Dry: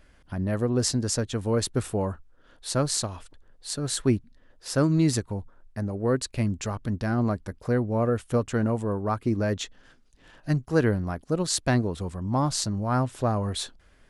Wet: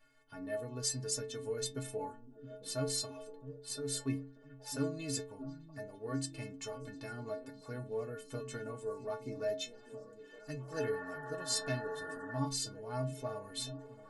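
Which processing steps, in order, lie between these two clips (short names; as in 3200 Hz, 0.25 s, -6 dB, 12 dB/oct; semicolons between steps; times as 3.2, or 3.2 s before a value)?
painted sound noise, 10.72–12.39, 220–1900 Hz -34 dBFS; bell 63 Hz -15 dB 3 oct; metallic resonator 130 Hz, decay 0.56 s, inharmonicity 0.03; delay with a stepping band-pass 0.663 s, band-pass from 180 Hz, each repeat 0.7 oct, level -8 dB; dynamic EQ 1100 Hz, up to -7 dB, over -57 dBFS, Q 1.1; gain +5.5 dB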